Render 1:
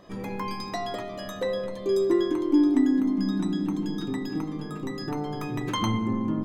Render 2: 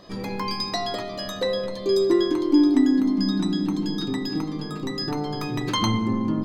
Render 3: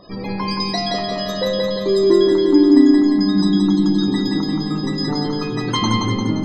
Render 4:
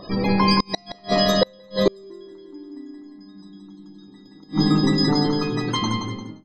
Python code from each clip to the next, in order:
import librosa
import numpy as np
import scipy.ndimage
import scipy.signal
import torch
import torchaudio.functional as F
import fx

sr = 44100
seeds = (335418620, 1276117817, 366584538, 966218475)

y1 = fx.peak_eq(x, sr, hz=4500.0, db=12.5, octaves=0.54)
y1 = y1 * 10.0 ** (3.0 / 20.0)
y2 = fx.spec_topn(y1, sr, count=64)
y2 = fx.echo_feedback(y2, sr, ms=174, feedback_pct=54, wet_db=-3.0)
y2 = y2 * 10.0 ** (3.5 / 20.0)
y3 = fx.fade_out_tail(y2, sr, length_s=2.0)
y3 = fx.gate_flip(y3, sr, shuts_db=-11.0, range_db=-33)
y3 = y3 * 10.0 ** (5.5 / 20.0)